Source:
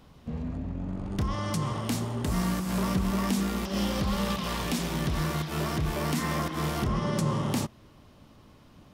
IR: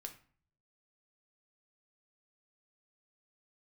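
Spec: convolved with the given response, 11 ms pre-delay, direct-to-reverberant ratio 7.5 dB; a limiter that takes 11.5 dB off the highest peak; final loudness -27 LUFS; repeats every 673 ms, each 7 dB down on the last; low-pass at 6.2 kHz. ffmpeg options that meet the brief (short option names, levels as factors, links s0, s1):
-filter_complex "[0:a]lowpass=6200,alimiter=level_in=1.88:limit=0.0631:level=0:latency=1,volume=0.531,aecho=1:1:673|1346|2019|2692|3365:0.447|0.201|0.0905|0.0407|0.0183,asplit=2[s0][s1];[1:a]atrim=start_sample=2205,adelay=11[s2];[s1][s2]afir=irnorm=-1:irlink=0,volume=0.708[s3];[s0][s3]amix=inputs=2:normalize=0,volume=2.99"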